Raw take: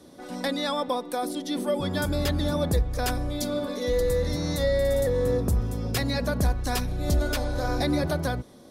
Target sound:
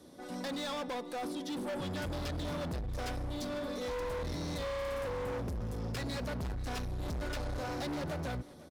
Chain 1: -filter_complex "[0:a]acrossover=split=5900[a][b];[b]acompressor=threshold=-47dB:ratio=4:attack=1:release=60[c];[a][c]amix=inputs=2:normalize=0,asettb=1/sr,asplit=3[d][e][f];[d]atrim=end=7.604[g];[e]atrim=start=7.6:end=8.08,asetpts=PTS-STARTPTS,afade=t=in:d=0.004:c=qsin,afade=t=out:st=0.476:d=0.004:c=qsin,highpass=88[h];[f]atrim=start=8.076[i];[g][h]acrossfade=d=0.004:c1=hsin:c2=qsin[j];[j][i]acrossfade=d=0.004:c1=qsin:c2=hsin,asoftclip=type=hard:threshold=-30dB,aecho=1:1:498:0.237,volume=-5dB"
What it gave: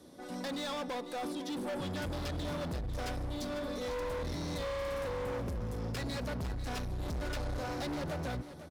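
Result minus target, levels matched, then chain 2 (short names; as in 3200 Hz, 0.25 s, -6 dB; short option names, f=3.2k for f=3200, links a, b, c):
echo-to-direct +7 dB
-filter_complex "[0:a]acrossover=split=5900[a][b];[b]acompressor=threshold=-47dB:ratio=4:attack=1:release=60[c];[a][c]amix=inputs=2:normalize=0,asettb=1/sr,asplit=3[d][e][f];[d]atrim=end=7.604[g];[e]atrim=start=7.6:end=8.08,asetpts=PTS-STARTPTS,afade=t=in:d=0.004:c=qsin,afade=t=out:st=0.476:d=0.004:c=qsin,highpass=88[h];[f]atrim=start=8.076[i];[g][h]acrossfade=d=0.004:c1=hsin:c2=qsin[j];[j][i]acrossfade=d=0.004:c1=qsin:c2=hsin,asoftclip=type=hard:threshold=-30dB,aecho=1:1:498:0.106,volume=-5dB"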